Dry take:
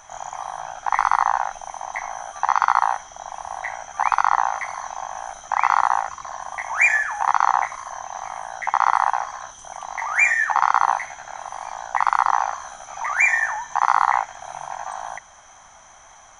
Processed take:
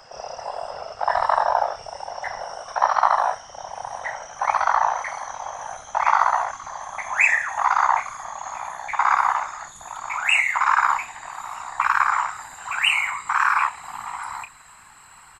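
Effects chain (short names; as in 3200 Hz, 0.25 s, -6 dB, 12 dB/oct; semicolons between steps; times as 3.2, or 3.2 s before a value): speed glide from 84% -> 129%; whisperiser; doubler 30 ms -10.5 dB; gain -1 dB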